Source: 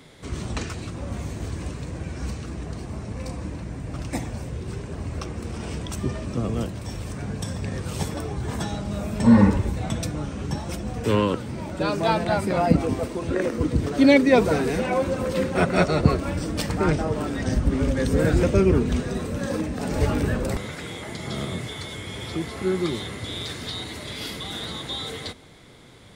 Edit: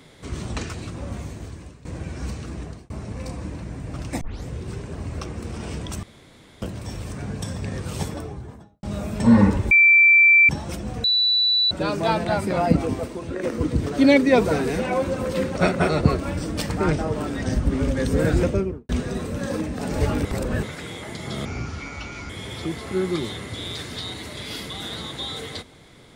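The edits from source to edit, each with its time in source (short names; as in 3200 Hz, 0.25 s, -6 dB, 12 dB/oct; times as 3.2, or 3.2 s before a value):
1.06–1.85 fade out, to -17.5 dB
2.62–2.9 fade out
4.21 tape start 0.26 s
6.03–6.62 room tone
7.95–8.83 studio fade out
9.71–10.49 bleep 2340 Hz -10 dBFS
11.04–11.71 bleep 3960 Hz -16 dBFS
12.85–13.43 fade out linear, to -6.5 dB
15.56–15.89 reverse
18.37–18.89 studio fade out
20.25–20.63 reverse
21.45–22 speed 65%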